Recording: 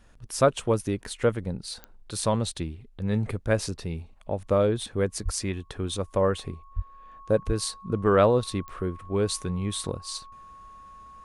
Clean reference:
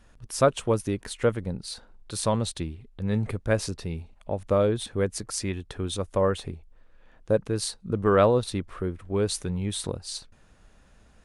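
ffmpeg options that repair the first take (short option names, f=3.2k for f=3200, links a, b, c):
-filter_complex "[0:a]adeclick=t=4,bandreject=f=1.1k:w=30,asplit=3[a][b][c];[a]afade=t=out:st=5.24:d=0.02[d];[b]highpass=f=140:w=0.5412,highpass=f=140:w=1.3066,afade=t=in:st=5.24:d=0.02,afade=t=out:st=5.36:d=0.02[e];[c]afade=t=in:st=5.36:d=0.02[f];[d][e][f]amix=inputs=3:normalize=0,asplit=3[g][h][i];[g]afade=t=out:st=6.75:d=0.02[j];[h]highpass=f=140:w=0.5412,highpass=f=140:w=1.3066,afade=t=in:st=6.75:d=0.02,afade=t=out:st=6.87:d=0.02[k];[i]afade=t=in:st=6.87:d=0.02[l];[j][k][l]amix=inputs=3:normalize=0,asplit=3[m][n][o];[m]afade=t=out:st=7.46:d=0.02[p];[n]highpass=f=140:w=0.5412,highpass=f=140:w=1.3066,afade=t=in:st=7.46:d=0.02,afade=t=out:st=7.58:d=0.02[q];[o]afade=t=in:st=7.58:d=0.02[r];[p][q][r]amix=inputs=3:normalize=0"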